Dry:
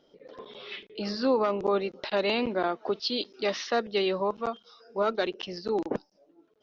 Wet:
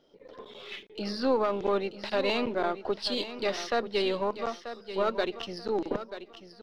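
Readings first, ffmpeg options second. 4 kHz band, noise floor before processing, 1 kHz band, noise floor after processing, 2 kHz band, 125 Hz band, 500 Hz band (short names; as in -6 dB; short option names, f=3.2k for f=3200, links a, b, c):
-1.0 dB, -66 dBFS, -1.0 dB, -54 dBFS, -1.0 dB, -1.5 dB, -1.0 dB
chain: -af "aeval=exprs='if(lt(val(0),0),0.708*val(0),val(0))':c=same,aecho=1:1:936|1872|2808:0.266|0.0718|0.0194"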